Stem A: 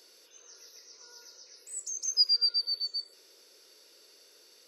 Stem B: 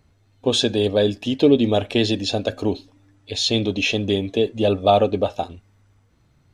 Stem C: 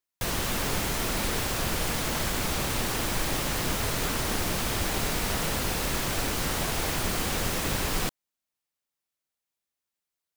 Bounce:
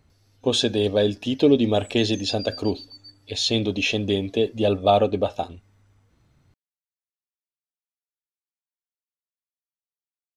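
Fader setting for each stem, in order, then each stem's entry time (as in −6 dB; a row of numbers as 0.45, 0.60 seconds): −12.0 dB, −2.0 dB, muted; 0.10 s, 0.00 s, muted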